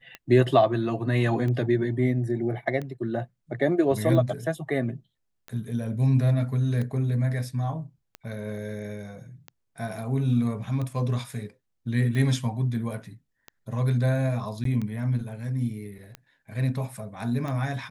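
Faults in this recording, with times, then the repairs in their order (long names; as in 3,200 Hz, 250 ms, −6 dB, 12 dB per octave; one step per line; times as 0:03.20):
scratch tick 45 rpm −22 dBFS
0:14.64–0:14.65: drop-out 13 ms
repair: click removal
repair the gap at 0:14.64, 13 ms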